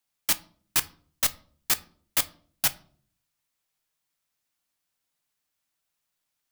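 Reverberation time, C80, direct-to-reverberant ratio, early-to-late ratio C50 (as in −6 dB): 0.55 s, 24.5 dB, 11.5 dB, 20.0 dB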